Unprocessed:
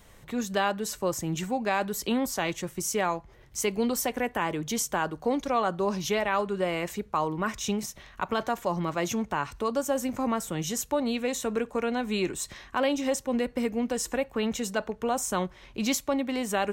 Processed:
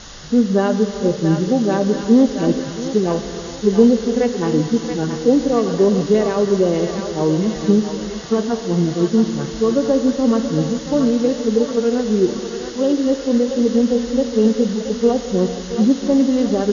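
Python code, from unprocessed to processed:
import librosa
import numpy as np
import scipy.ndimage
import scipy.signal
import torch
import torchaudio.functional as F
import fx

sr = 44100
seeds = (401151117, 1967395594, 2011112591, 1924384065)

y = fx.hpss_only(x, sr, part='harmonic')
y = fx.low_shelf_res(y, sr, hz=600.0, db=10.0, q=1.5)
y = fx.rider(y, sr, range_db=10, speed_s=2.0)
y = fx.rev_gated(y, sr, seeds[0], gate_ms=480, shape='flat', drr_db=8.5)
y = fx.quant_dither(y, sr, seeds[1], bits=6, dither='triangular')
y = fx.brickwall_lowpass(y, sr, high_hz=7000.0)
y = fx.peak_eq(y, sr, hz=2400.0, db=-12.0, octaves=0.24)
y = fx.echo_thinned(y, sr, ms=677, feedback_pct=76, hz=870.0, wet_db=-5.0)
y = y * librosa.db_to_amplitude(2.5)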